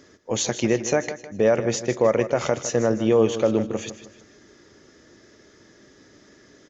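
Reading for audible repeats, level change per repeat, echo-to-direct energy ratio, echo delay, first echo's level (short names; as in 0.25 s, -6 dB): 3, -8.5 dB, -12.0 dB, 0.156 s, -12.5 dB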